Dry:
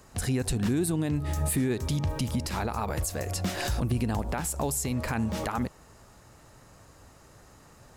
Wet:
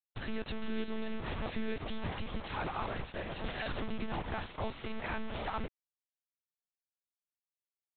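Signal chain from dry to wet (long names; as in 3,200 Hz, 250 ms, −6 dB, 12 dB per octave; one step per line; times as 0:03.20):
low-shelf EQ 410 Hz −6 dB
bit reduction 6 bits
one-pitch LPC vocoder at 8 kHz 220 Hz
level −4 dB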